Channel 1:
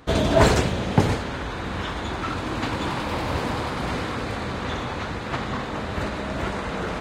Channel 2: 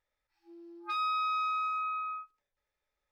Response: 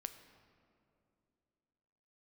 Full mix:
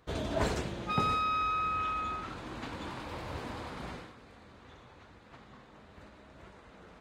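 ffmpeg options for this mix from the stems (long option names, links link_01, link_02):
-filter_complex "[0:a]flanger=delay=1.7:depth=4.2:regen=-71:speed=0.62:shape=triangular,volume=-10dB,afade=type=out:start_time=3.86:duration=0.28:silence=0.266073[link_01];[1:a]volume=0.5dB[link_02];[link_01][link_02]amix=inputs=2:normalize=0"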